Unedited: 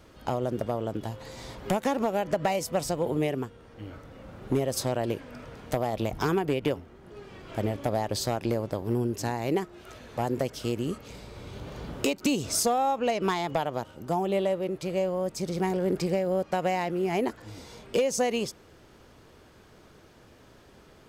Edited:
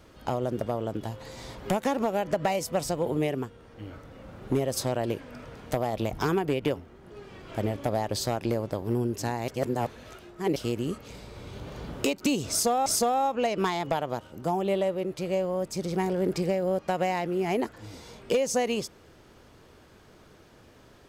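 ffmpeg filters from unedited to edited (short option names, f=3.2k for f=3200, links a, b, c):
-filter_complex "[0:a]asplit=4[a][b][c][d];[a]atrim=end=9.482[e];[b]atrim=start=9.478:end=10.562,asetpts=PTS-STARTPTS,areverse[f];[c]atrim=start=10.558:end=12.862[g];[d]atrim=start=12.498[h];[e][f]acrossfade=d=0.004:c1=hsin:c2=hsin[i];[i][g]acrossfade=d=0.004:c1=hsin:c2=hsin[j];[j][h]acrossfade=d=0.004:c1=hsin:c2=hsin"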